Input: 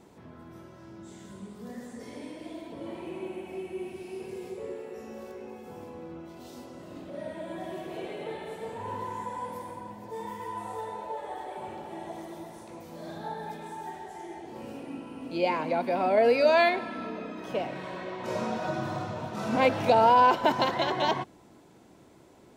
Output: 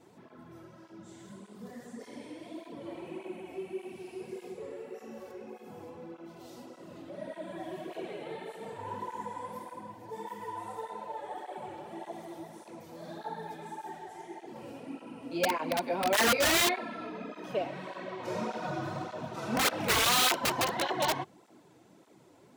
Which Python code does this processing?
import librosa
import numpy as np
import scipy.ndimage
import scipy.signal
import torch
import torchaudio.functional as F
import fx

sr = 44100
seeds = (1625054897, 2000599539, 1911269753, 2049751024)

y = fx.peak_eq(x, sr, hz=61.0, db=-14.5, octaves=0.83)
y = (np.mod(10.0 ** (17.5 / 20.0) * y + 1.0, 2.0) - 1.0) / 10.0 ** (17.5 / 20.0)
y = fx.flanger_cancel(y, sr, hz=1.7, depth_ms=5.4)